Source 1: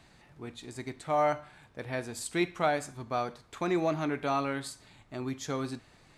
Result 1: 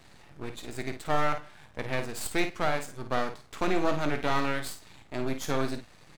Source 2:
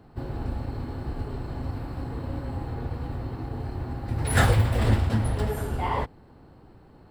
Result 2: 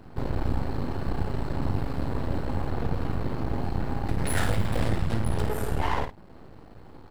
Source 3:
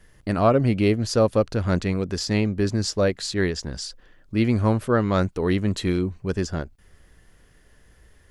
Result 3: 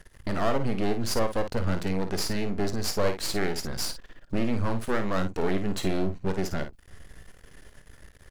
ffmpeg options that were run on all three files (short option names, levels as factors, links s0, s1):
-filter_complex "[0:a]acontrast=84,alimiter=limit=0.2:level=0:latency=1:release=498,aeval=exprs='max(val(0),0)':c=same,asplit=2[s0][s1];[s1]aecho=0:1:21|53:0.178|0.355[s2];[s0][s2]amix=inputs=2:normalize=0"